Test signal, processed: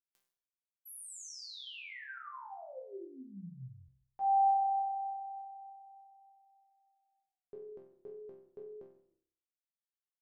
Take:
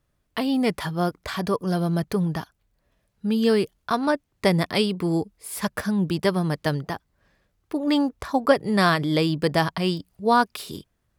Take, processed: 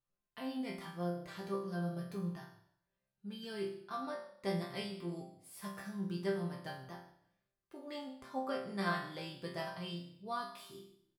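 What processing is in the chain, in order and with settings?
chord resonator C3 sus4, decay 0.6 s; frequency-shifting echo 150 ms, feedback 33%, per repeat -32 Hz, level -22 dB

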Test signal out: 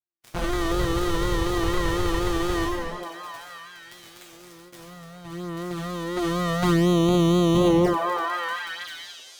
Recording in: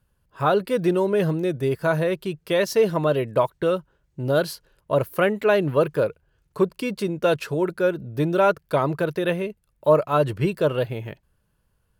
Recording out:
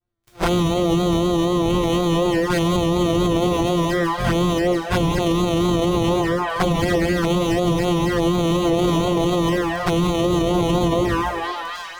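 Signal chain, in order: sorted samples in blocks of 256 samples; low-pass 3.7 kHz 6 dB/octave; crackle 12 per s -32 dBFS; on a send: repeats whose band climbs or falls 309 ms, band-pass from 510 Hz, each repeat 0.7 oct, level -1 dB; on the sum: gated-style reverb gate 420 ms falling, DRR -5 dB; touch-sensitive flanger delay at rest 9 ms, full sweep at -16 dBFS; gate with hold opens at -43 dBFS; peak limiter -17.5 dBFS; harmonic-percussive split percussive +4 dB; vibrato 4.1 Hz 60 cents; trim +6 dB

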